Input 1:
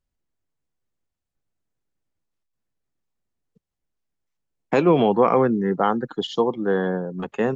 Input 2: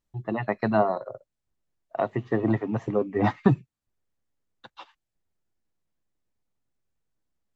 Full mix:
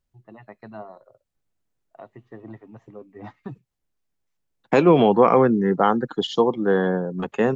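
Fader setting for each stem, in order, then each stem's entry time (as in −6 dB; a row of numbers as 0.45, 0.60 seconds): +2.0, −16.5 decibels; 0.00, 0.00 seconds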